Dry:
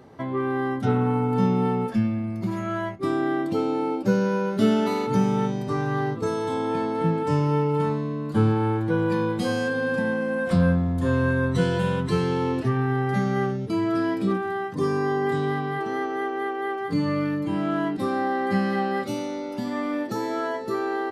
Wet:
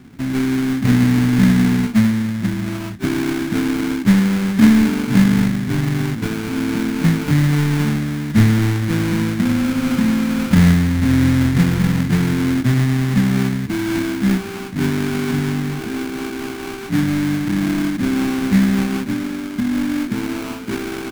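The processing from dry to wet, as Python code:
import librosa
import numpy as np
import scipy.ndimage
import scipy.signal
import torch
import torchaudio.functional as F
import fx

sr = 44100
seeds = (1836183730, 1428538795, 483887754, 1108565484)

y = fx.halfwave_hold(x, sr)
y = fx.low_shelf(y, sr, hz=340.0, db=11.0)
y = fx.sample_hold(y, sr, seeds[0], rate_hz=1900.0, jitter_pct=20)
y = fx.graphic_eq(y, sr, hz=(250, 500, 2000), db=(10, -8, 4))
y = y * librosa.db_to_amplitude(-8.5)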